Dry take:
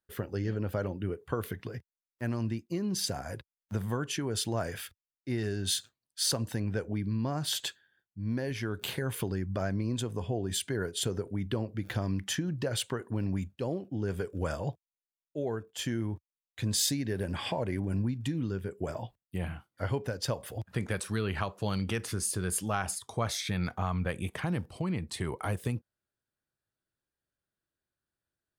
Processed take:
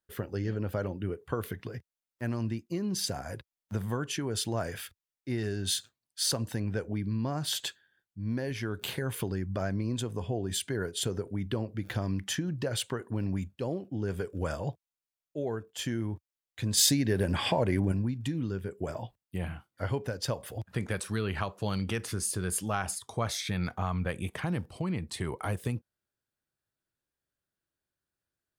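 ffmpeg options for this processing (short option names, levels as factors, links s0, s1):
-filter_complex "[0:a]asettb=1/sr,asplit=3[s0][s1][s2];[s0]atrim=end=16.774[s3];[s1]atrim=start=16.77:end=17.92,asetpts=PTS-STARTPTS,afade=t=in:d=0.004:c=qsin,afade=t=out:st=1.146:d=0.004:c=qsin,acontrast=33[s4];[s2]atrim=start=17.916[s5];[s3][s4]acrossfade=d=0.004:c1=hsin:c2=qsin[s6];[s6][s5]acrossfade=d=0.004:c1=qsin:c2=hsin"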